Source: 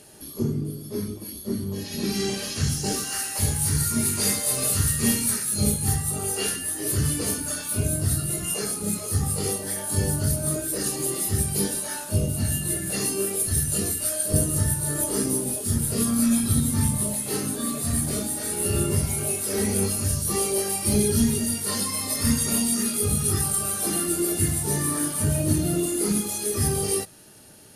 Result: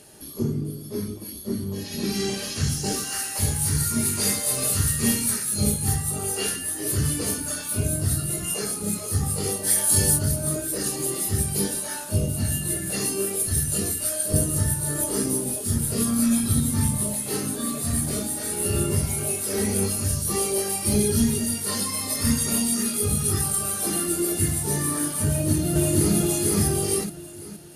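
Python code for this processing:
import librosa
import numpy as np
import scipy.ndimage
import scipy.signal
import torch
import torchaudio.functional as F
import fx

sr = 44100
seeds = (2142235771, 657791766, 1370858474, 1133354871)

y = fx.high_shelf(x, sr, hz=2200.0, db=10.0, at=(9.63, 10.17), fade=0.02)
y = fx.echo_throw(y, sr, start_s=25.28, length_s=0.87, ms=470, feedback_pct=40, wet_db=0.0)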